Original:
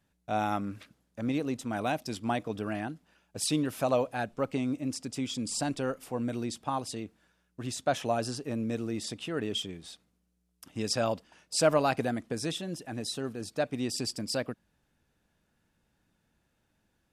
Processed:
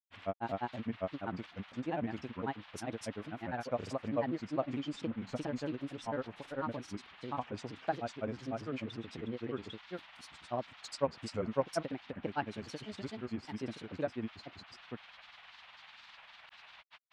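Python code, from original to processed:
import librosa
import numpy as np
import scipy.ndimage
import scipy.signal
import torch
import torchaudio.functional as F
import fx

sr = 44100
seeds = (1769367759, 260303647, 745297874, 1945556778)

y = fx.dmg_noise_band(x, sr, seeds[0], low_hz=730.0, high_hz=3600.0, level_db=-50.0)
y = fx.env_lowpass_down(y, sr, base_hz=1900.0, full_db=-28.5)
y = fx.granulator(y, sr, seeds[1], grain_ms=88.0, per_s=20.0, spray_ms=753.0, spread_st=3)
y = y * 10.0 ** (-4.0 / 20.0)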